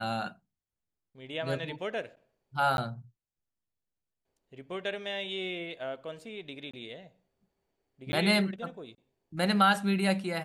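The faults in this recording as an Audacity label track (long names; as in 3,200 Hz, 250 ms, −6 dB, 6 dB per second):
2.770000	2.780000	drop-out 11 ms
6.710000	6.740000	drop-out 25 ms
8.120000	8.130000	drop-out 10 ms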